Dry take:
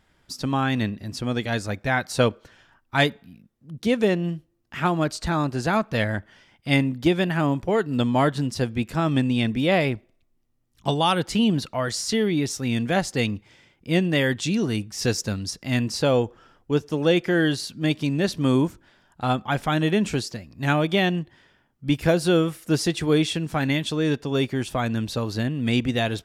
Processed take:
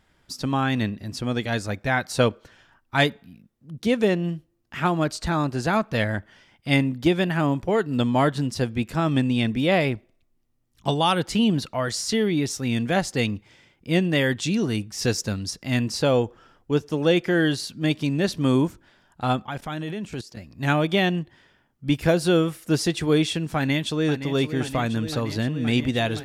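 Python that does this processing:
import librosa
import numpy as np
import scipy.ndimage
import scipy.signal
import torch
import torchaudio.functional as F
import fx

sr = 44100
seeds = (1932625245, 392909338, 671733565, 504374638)

y = fx.level_steps(x, sr, step_db=15, at=(19.45, 20.37))
y = fx.echo_throw(y, sr, start_s=23.56, length_s=0.76, ms=520, feedback_pct=85, wet_db=-11.0)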